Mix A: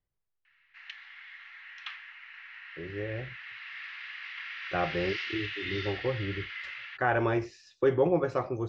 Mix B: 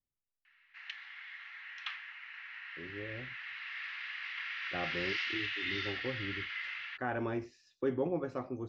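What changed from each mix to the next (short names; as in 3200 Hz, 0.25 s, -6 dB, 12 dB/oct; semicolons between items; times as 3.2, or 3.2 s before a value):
speech -10.0 dB; master: add bell 250 Hz +13 dB 0.38 oct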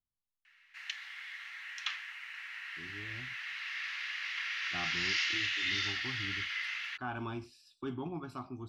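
speech: add fixed phaser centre 1900 Hz, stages 6; master: remove air absorption 250 m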